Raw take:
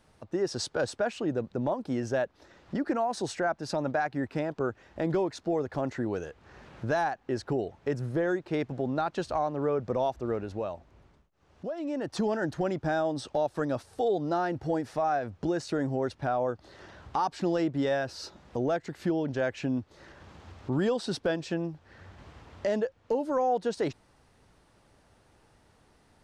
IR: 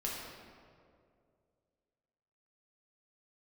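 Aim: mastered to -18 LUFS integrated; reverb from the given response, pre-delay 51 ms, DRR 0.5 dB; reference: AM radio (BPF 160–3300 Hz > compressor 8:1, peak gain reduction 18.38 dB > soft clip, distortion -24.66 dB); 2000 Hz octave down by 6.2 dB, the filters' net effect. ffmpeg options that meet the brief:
-filter_complex "[0:a]equalizer=f=2k:t=o:g=-8.5,asplit=2[a][b];[1:a]atrim=start_sample=2205,adelay=51[c];[b][c]afir=irnorm=-1:irlink=0,volume=-3.5dB[d];[a][d]amix=inputs=2:normalize=0,highpass=160,lowpass=3.3k,acompressor=threshold=-39dB:ratio=8,asoftclip=threshold=-31dB,volume=25.5dB"

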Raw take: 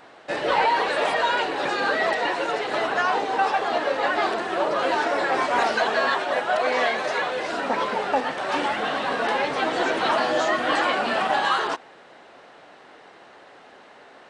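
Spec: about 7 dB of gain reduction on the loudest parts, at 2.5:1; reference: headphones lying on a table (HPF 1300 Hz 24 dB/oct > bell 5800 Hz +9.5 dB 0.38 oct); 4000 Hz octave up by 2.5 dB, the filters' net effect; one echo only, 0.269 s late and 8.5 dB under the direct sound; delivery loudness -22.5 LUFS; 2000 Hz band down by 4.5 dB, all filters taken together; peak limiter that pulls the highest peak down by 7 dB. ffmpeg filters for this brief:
-af "equalizer=f=2k:t=o:g=-6,equalizer=f=4k:t=o:g=4,acompressor=threshold=-29dB:ratio=2.5,alimiter=limit=-22.5dB:level=0:latency=1,highpass=f=1.3k:w=0.5412,highpass=f=1.3k:w=1.3066,equalizer=f=5.8k:t=o:w=0.38:g=9.5,aecho=1:1:269:0.376,volume=13dB"

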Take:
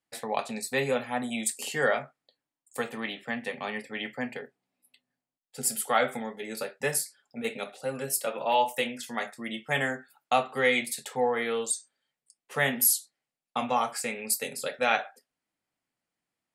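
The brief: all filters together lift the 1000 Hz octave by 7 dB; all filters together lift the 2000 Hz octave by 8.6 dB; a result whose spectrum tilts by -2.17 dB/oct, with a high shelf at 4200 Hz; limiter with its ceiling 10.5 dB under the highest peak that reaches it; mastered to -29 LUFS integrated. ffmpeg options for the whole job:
-af "equalizer=f=1k:t=o:g=7.5,equalizer=f=2k:t=o:g=6.5,highshelf=f=4.2k:g=7.5,volume=-2.5dB,alimiter=limit=-16dB:level=0:latency=1"

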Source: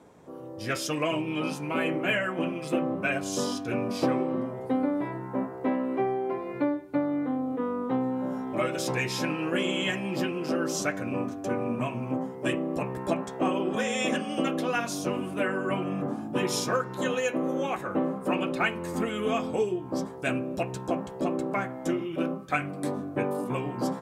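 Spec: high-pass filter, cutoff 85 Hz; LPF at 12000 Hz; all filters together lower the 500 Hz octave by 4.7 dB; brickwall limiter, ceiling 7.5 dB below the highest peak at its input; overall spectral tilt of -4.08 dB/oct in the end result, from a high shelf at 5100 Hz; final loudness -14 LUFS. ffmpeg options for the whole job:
-af "highpass=85,lowpass=12k,equalizer=f=500:t=o:g=-6,highshelf=f=5.1k:g=7.5,volume=17.5dB,alimiter=limit=-3dB:level=0:latency=1"

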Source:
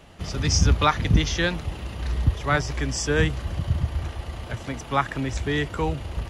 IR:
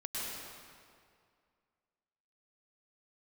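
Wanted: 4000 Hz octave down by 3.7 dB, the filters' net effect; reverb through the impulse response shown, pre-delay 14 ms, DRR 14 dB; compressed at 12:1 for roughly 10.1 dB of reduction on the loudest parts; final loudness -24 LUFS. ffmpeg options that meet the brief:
-filter_complex "[0:a]equalizer=f=4k:t=o:g=-5,acompressor=threshold=-23dB:ratio=12,asplit=2[a][b];[1:a]atrim=start_sample=2205,adelay=14[c];[b][c]afir=irnorm=-1:irlink=0,volume=-17dB[d];[a][d]amix=inputs=2:normalize=0,volume=6dB"

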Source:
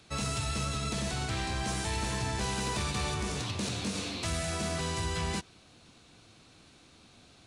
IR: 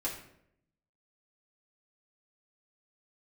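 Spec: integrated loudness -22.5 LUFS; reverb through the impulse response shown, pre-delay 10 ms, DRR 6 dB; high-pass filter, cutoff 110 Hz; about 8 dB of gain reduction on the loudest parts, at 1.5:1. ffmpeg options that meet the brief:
-filter_complex "[0:a]highpass=110,acompressor=threshold=-53dB:ratio=1.5,asplit=2[a][b];[1:a]atrim=start_sample=2205,adelay=10[c];[b][c]afir=irnorm=-1:irlink=0,volume=-9.5dB[d];[a][d]amix=inputs=2:normalize=0,volume=18dB"

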